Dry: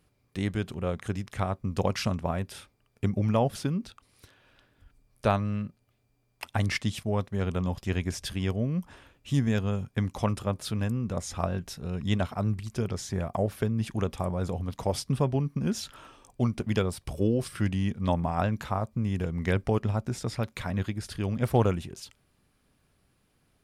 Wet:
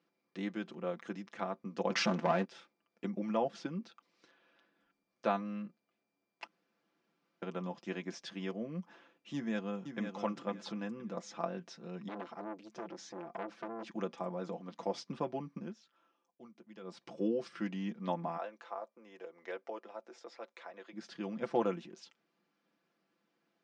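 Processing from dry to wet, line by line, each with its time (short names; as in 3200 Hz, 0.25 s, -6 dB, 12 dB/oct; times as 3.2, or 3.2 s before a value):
1.9–2.45 sample leveller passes 3
6.47–7.42 room tone
9.34–10.2 echo throw 0.51 s, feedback 25%, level -7 dB
12.08–13.86 core saturation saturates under 1500 Hz
15.57–16.98 dip -17 dB, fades 0.17 s
18.37–20.93 ladder high-pass 370 Hz, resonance 30%
whole clip: elliptic band-pass 220–6200 Hz, stop band 40 dB; high shelf 3500 Hz -7 dB; comb 5.9 ms, depth 67%; gain -7 dB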